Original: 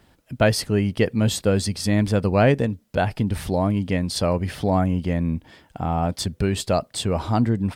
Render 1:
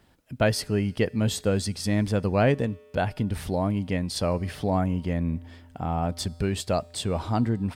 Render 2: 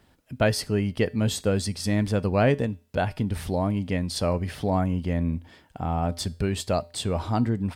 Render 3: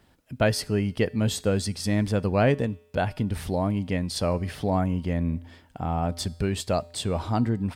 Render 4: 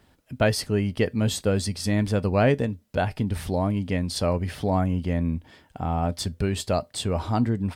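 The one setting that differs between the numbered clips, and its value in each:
resonator, decay: 2, 0.41, 0.87, 0.16 s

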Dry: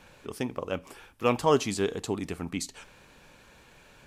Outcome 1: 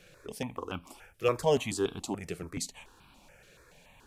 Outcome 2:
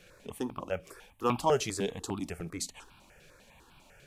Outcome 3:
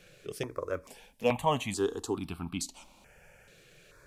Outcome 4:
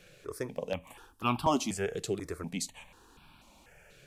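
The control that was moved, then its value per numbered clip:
step phaser, rate: 7, 10, 2.3, 4.1 Hz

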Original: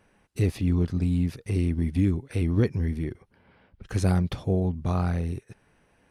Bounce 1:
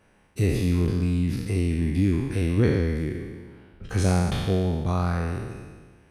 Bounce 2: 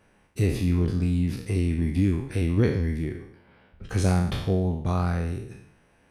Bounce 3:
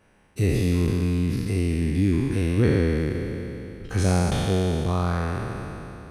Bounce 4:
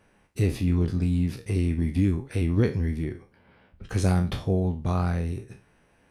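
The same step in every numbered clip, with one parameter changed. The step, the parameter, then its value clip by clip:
spectral trails, RT60: 1.51, 0.68, 3.17, 0.31 s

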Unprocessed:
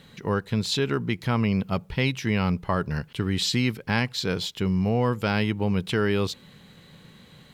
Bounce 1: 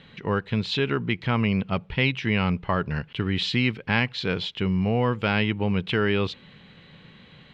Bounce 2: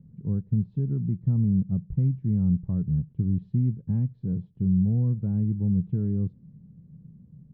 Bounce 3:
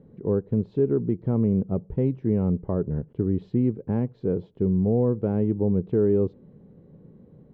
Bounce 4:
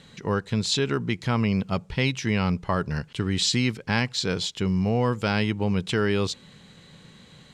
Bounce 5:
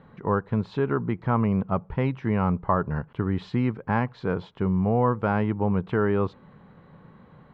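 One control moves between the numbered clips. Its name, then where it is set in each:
synth low-pass, frequency: 2900, 160, 420, 7600, 1100 Hz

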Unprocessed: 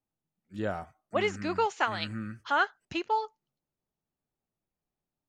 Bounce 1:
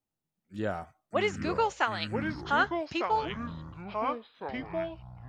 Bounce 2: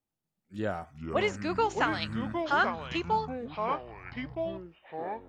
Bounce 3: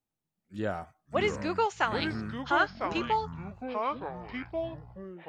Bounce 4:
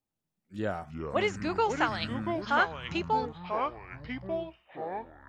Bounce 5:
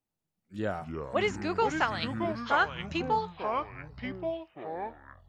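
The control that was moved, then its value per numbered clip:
echoes that change speed, time: 599, 230, 399, 154, 91 ms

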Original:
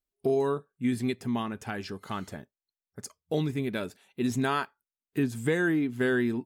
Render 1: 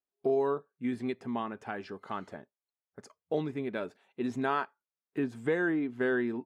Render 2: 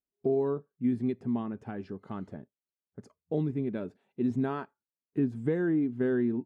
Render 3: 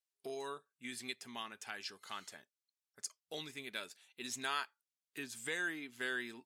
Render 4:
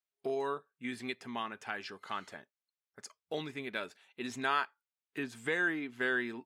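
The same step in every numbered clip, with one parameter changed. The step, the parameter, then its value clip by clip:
band-pass, frequency: 730, 240, 5600, 2000 Hz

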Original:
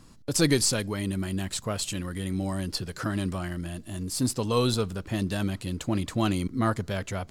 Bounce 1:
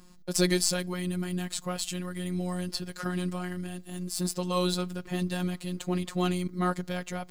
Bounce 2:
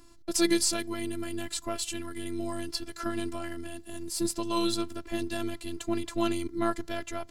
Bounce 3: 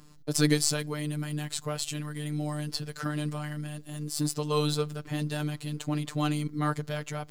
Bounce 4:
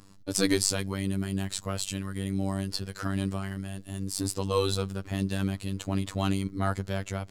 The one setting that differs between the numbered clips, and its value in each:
robotiser, frequency: 180, 340, 150, 97 Hz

